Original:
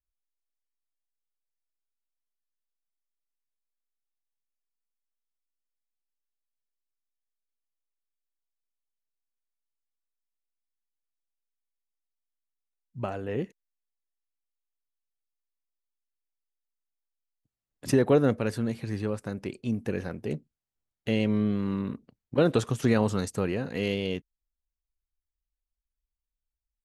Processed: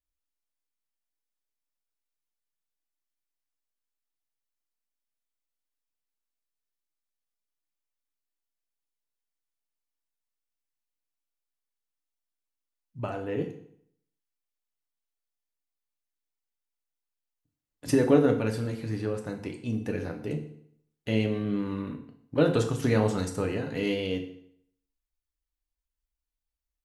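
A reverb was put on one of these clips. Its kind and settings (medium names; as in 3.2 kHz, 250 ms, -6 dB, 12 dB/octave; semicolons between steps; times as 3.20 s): FDN reverb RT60 0.66 s, low-frequency decay 1.05×, high-frequency decay 0.9×, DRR 3 dB; trim -2 dB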